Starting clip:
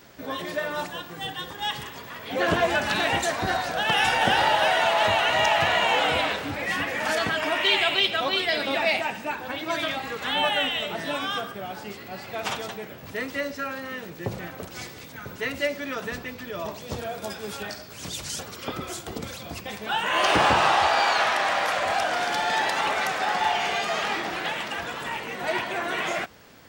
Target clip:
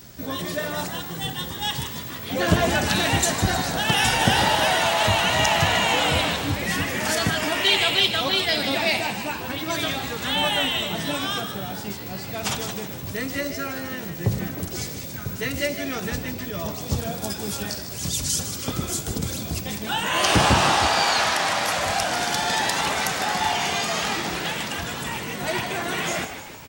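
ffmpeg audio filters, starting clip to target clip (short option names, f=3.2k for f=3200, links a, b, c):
-filter_complex "[0:a]bass=f=250:g=13,treble=f=4k:g=12,asplit=2[a][b];[b]asplit=7[c][d][e][f][g][h][i];[c]adelay=154,afreqshift=88,volume=-10.5dB[j];[d]adelay=308,afreqshift=176,volume=-15.4dB[k];[e]adelay=462,afreqshift=264,volume=-20.3dB[l];[f]adelay=616,afreqshift=352,volume=-25.1dB[m];[g]adelay=770,afreqshift=440,volume=-30dB[n];[h]adelay=924,afreqshift=528,volume=-34.9dB[o];[i]adelay=1078,afreqshift=616,volume=-39.8dB[p];[j][k][l][m][n][o][p]amix=inputs=7:normalize=0[q];[a][q]amix=inputs=2:normalize=0,volume=-1dB"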